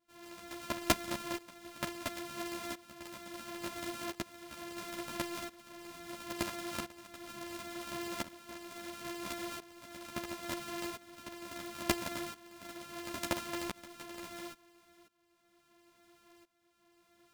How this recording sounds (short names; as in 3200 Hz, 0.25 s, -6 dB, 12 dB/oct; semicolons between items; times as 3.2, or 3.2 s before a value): a buzz of ramps at a fixed pitch in blocks of 128 samples; tremolo saw up 0.73 Hz, depth 90%; a shimmering, thickened sound